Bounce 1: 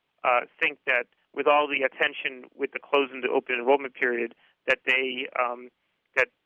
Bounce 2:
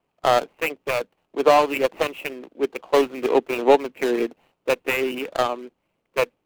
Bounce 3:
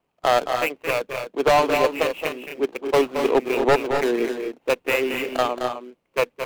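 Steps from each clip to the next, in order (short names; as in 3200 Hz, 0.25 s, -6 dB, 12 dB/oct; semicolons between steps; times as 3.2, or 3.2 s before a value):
median filter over 25 samples; gain +7 dB
wavefolder -10 dBFS; loudspeakers at several distances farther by 76 m -8 dB, 87 m -8 dB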